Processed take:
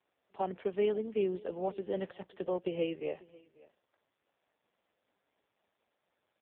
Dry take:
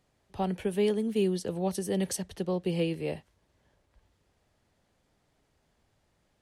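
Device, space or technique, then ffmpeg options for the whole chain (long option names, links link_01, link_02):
satellite phone: -af "highpass=360,lowpass=3100,aecho=1:1:542:0.0794" -ar 8000 -c:a libopencore_amrnb -b:a 4750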